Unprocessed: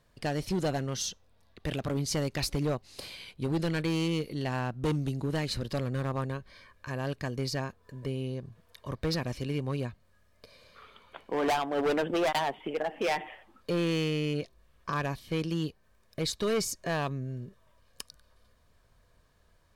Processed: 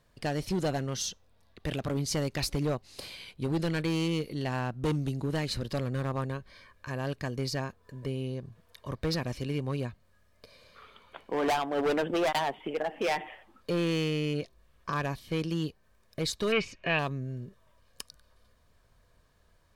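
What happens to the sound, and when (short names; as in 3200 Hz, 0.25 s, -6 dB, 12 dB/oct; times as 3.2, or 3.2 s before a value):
16.52–16.99 synth low-pass 2600 Hz, resonance Q 7.6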